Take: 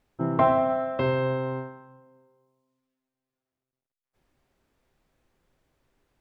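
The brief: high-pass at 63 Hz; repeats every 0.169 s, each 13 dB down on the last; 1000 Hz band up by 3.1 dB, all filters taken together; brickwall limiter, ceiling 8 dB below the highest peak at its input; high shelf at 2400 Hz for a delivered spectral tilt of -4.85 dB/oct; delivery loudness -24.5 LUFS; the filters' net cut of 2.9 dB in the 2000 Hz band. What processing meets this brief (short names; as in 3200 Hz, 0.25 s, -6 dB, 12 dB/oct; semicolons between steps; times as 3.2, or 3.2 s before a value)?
HPF 63 Hz; bell 1000 Hz +5.5 dB; bell 2000 Hz -4.5 dB; high shelf 2400 Hz -3.5 dB; limiter -15 dBFS; feedback echo 0.169 s, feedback 22%, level -13 dB; gain +2 dB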